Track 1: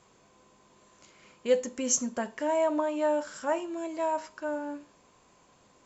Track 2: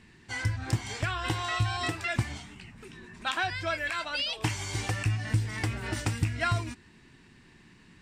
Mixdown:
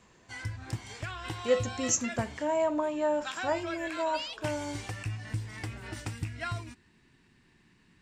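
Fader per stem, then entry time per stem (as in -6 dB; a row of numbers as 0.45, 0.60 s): -1.5, -7.5 dB; 0.00, 0.00 s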